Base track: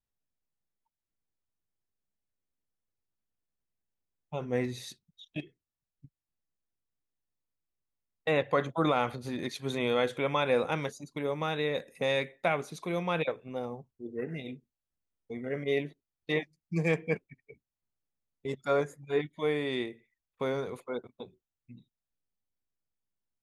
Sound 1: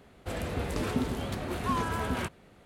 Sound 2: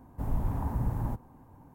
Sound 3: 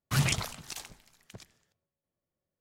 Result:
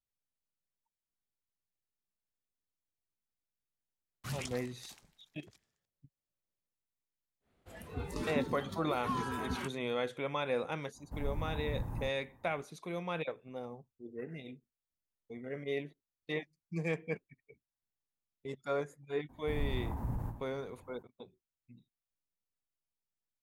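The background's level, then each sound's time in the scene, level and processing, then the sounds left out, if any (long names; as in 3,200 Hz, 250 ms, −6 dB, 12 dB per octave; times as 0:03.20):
base track −7 dB
0:04.13: mix in 3 −13.5 dB
0:07.40: mix in 1 −5.5 dB, fades 0.10 s + noise reduction from a noise print of the clip's start 13 dB
0:10.93: mix in 2 −8 dB, fades 0.05 s
0:19.29: mix in 2 −5.5 dB + every ending faded ahead of time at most 120 dB per second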